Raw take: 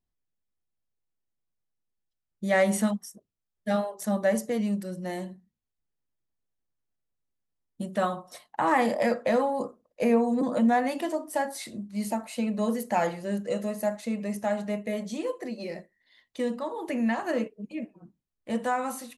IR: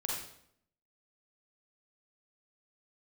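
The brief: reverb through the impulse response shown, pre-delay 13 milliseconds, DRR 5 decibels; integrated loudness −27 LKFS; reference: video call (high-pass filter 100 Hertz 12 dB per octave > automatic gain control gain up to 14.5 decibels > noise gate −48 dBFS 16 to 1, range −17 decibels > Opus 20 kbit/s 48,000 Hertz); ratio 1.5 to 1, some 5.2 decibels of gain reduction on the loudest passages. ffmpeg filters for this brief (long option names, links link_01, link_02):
-filter_complex "[0:a]acompressor=threshold=-33dB:ratio=1.5,asplit=2[link_01][link_02];[1:a]atrim=start_sample=2205,adelay=13[link_03];[link_02][link_03]afir=irnorm=-1:irlink=0,volume=-8dB[link_04];[link_01][link_04]amix=inputs=2:normalize=0,highpass=100,dynaudnorm=maxgain=14.5dB,agate=range=-17dB:threshold=-48dB:ratio=16,volume=-2.5dB" -ar 48000 -c:a libopus -b:a 20k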